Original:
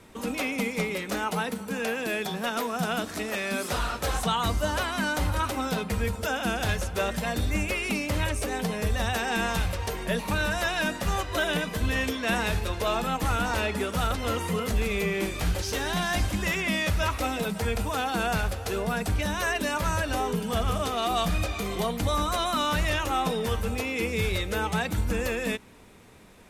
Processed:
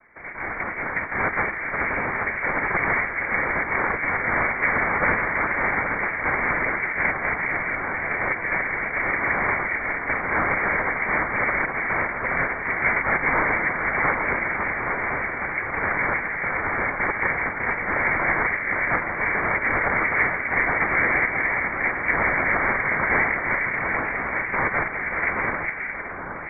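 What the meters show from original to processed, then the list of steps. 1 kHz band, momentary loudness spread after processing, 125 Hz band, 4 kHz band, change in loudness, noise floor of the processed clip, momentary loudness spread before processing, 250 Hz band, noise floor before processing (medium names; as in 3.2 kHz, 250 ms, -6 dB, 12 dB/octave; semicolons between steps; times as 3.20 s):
+5.0 dB, 5 LU, -6.0 dB, under -30 dB, +5.5 dB, -31 dBFS, 3 LU, -3.0 dB, -38 dBFS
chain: tracing distortion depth 0.46 ms; steep high-pass 500 Hz 96 dB/octave; dynamic bell 1.5 kHz, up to +5 dB, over -44 dBFS, Q 2.4; peak limiter -20 dBFS, peak gain reduction 6.5 dB; level rider gain up to 5 dB; noise-vocoded speech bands 4; distance through air 360 m; echo whose repeats swap between lows and highs 411 ms, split 980 Hz, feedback 71%, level -3 dB; frequency inversion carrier 2.6 kHz; trim +4.5 dB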